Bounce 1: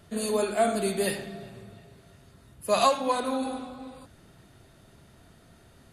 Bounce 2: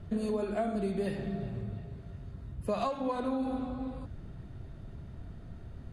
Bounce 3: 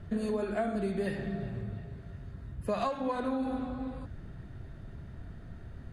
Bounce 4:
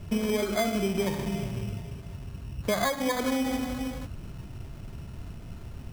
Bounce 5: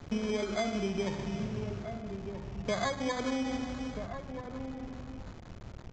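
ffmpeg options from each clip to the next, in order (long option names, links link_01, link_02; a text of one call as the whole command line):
ffmpeg -i in.wav -af "aemphasis=mode=reproduction:type=riaa,acompressor=threshold=-28dB:ratio=6,volume=-1dB" out.wav
ffmpeg -i in.wav -af "equalizer=frequency=1700:width_type=o:width=0.54:gain=6.5" out.wav
ffmpeg -i in.wav -af "acrusher=samples=16:mix=1:aa=0.000001,volume=4.5dB" out.wav
ffmpeg -i in.wav -filter_complex "[0:a]aeval=exprs='val(0)*gte(abs(val(0)),0.0119)':channel_layout=same,asplit=2[link_01][link_02];[link_02]adelay=1283,volume=-8dB,highshelf=frequency=4000:gain=-28.9[link_03];[link_01][link_03]amix=inputs=2:normalize=0,aresample=16000,aresample=44100,volume=-5dB" out.wav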